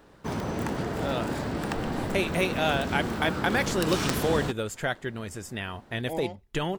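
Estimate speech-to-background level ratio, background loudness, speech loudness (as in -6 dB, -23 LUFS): 1.0 dB, -31.0 LUFS, -30.0 LUFS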